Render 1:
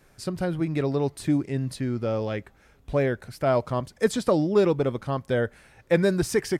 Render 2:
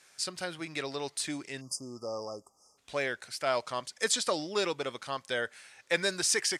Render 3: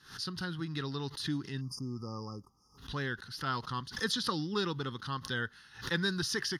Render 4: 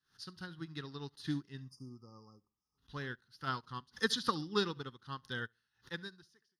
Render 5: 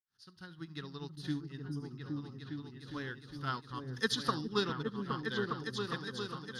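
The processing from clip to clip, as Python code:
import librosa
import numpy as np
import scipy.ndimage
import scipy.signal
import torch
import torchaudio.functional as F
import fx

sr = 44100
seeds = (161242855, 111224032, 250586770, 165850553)

y1 = fx.weighting(x, sr, curve='ITU-R 468')
y1 = fx.spec_erase(y1, sr, start_s=1.61, length_s=1.17, low_hz=1300.0, high_hz=4700.0)
y1 = y1 * 10.0 ** (-4.0 / 20.0)
y2 = fx.bass_treble(y1, sr, bass_db=13, treble_db=-3)
y2 = fx.fixed_phaser(y2, sr, hz=2300.0, stages=6)
y2 = fx.pre_swell(y2, sr, db_per_s=130.0)
y3 = fx.fade_out_tail(y2, sr, length_s=1.11)
y3 = fx.echo_feedback(y3, sr, ms=69, feedback_pct=34, wet_db=-16.5)
y3 = fx.upward_expand(y3, sr, threshold_db=-47.0, expansion=2.5)
y3 = y3 * 10.0 ** (2.5 / 20.0)
y4 = fx.fade_in_head(y3, sr, length_s=0.7)
y4 = fx.echo_opening(y4, sr, ms=408, hz=200, octaves=2, feedback_pct=70, wet_db=0)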